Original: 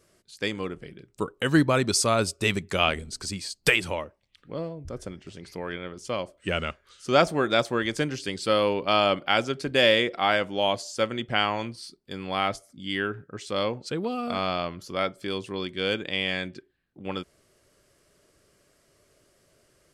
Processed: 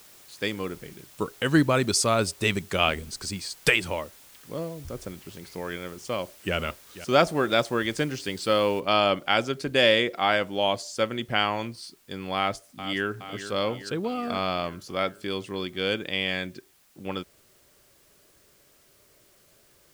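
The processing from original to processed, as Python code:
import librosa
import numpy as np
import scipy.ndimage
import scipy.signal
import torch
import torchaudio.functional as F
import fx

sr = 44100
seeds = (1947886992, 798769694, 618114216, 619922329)

y = fx.echo_throw(x, sr, start_s=5.94, length_s=0.61, ms=490, feedback_pct=40, wet_db=-15.0)
y = fx.noise_floor_step(y, sr, seeds[0], at_s=8.8, before_db=-52, after_db=-62, tilt_db=0.0)
y = fx.echo_throw(y, sr, start_s=12.36, length_s=0.8, ms=420, feedback_pct=65, wet_db=-11.5)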